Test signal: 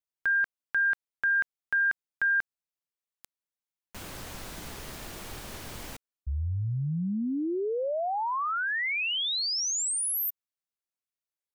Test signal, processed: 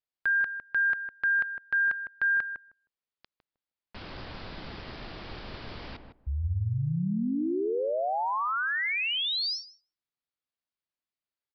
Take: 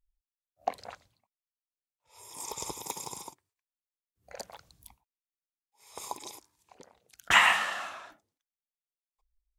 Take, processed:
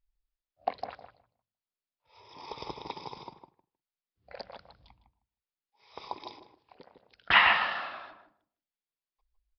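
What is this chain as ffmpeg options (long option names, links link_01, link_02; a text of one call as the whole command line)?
ffmpeg -i in.wav -filter_complex "[0:a]asplit=2[link_01][link_02];[link_02]adelay=156,lowpass=frequency=960:poles=1,volume=-5.5dB,asplit=2[link_03][link_04];[link_04]adelay=156,lowpass=frequency=960:poles=1,volume=0.18,asplit=2[link_05][link_06];[link_06]adelay=156,lowpass=frequency=960:poles=1,volume=0.18[link_07];[link_03][link_05][link_07]amix=inputs=3:normalize=0[link_08];[link_01][link_08]amix=inputs=2:normalize=0,aresample=11025,aresample=44100" out.wav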